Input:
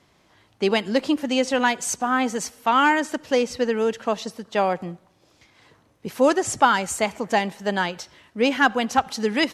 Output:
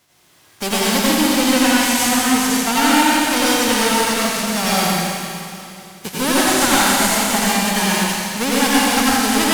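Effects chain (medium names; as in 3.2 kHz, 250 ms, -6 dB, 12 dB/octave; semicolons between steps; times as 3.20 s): formants flattened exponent 0.3; spectral noise reduction 6 dB; in parallel at +2 dB: compression, threshold -30 dBFS, peak gain reduction 18 dB; on the sum: one-sided clip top -18 dBFS; reverberation RT60 2.6 s, pre-delay 83 ms, DRR -8 dB; trim -2 dB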